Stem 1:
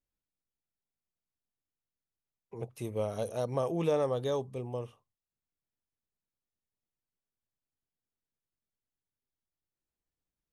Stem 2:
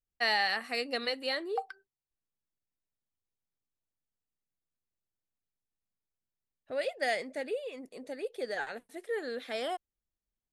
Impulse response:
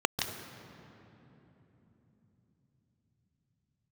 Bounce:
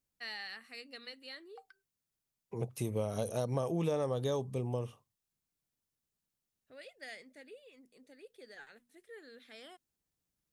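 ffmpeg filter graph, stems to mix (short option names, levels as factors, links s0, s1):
-filter_complex "[0:a]highpass=f=140:p=1,bass=f=250:g=8,treble=f=4000:g=5,volume=1.26[s0];[1:a]equalizer=f=690:w=1.1:g=-10,bandreject=f=60:t=h:w=6,bandreject=f=120:t=h:w=6,bandreject=f=180:t=h:w=6,bandreject=f=240:t=h:w=6,volume=0.237[s1];[s0][s1]amix=inputs=2:normalize=0,acompressor=threshold=0.0282:ratio=3"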